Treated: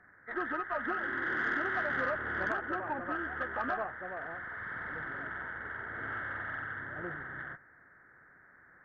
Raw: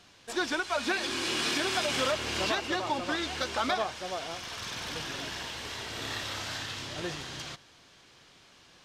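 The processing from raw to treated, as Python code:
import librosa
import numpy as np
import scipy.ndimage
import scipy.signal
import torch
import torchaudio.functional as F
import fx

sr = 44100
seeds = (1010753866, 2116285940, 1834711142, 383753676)

y = fx.freq_compress(x, sr, knee_hz=1200.0, ratio=4.0)
y = fx.transient(y, sr, attack_db=-6, sustain_db=3, at=(4.1, 5.22), fade=0.02)
y = fx.cheby_harmonics(y, sr, harmonics=(5, 6, 7, 8), levels_db=(-29, -28, -45, -45), full_scale_db=-12.5)
y = y * 10.0 ** (-6.5 / 20.0)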